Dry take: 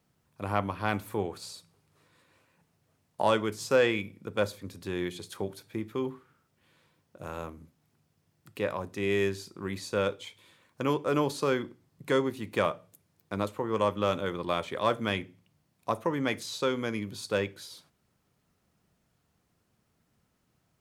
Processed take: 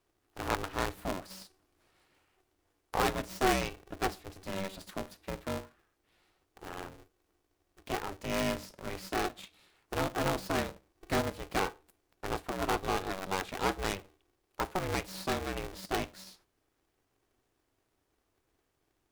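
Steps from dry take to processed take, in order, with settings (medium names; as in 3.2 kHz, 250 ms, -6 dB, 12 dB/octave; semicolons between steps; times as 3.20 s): tracing distortion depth 0.23 ms; speed mistake 44.1 kHz file played as 48 kHz; polarity switched at an audio rate 190 Hz; trim -4.5 dB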